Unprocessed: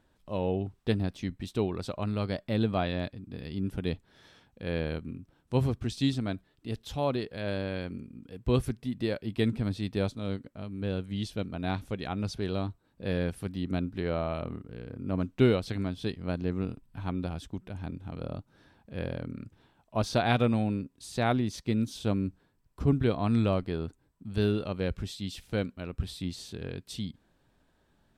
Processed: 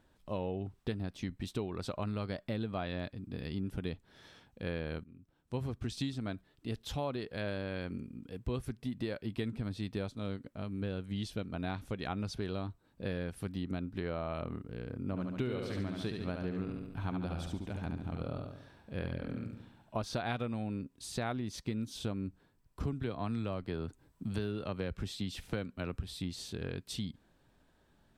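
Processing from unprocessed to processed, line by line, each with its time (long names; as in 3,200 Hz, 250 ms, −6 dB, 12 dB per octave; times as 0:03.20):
0:05.04–0:05.96: fade in, from −22 dB
0:15.04–0:19.99: repeating echo 71 ms, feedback 53%, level −5.5 dB
0:22.83–0:25.99: multiband upward and downward compressor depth 40%
whole clip: downward compressor, threshold −33 dBFS; dynamic equaliser 1,400 Hz, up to +3 dB, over −52 dBFS, Q 1.2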